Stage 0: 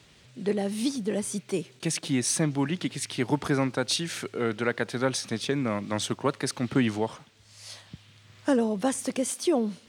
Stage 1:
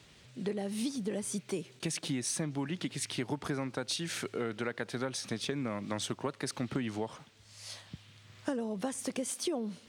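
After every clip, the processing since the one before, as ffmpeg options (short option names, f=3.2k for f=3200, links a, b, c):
-af "acompressor=threshold=-29dB:ratio=6,volume=-2dB"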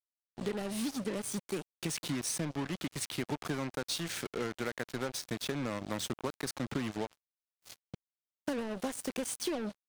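-af "acrusher=bits=5:mix=0:aa=0.5,volume=-1dB"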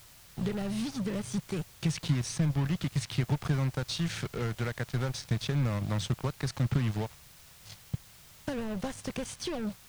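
-filter_complex "[0:a]aeval=exprs='val(0)+0.5*0.00841*sgn(val(0))':c=same,acrossover=split=7100[a][b];[b]acompressor=threshold=-53dB:ratio=4:attack=1:release=60[c];[a][c]amix=inputs=2:normalize=0,lowshelf=f=190:t=q:w=1.5:g=11.5"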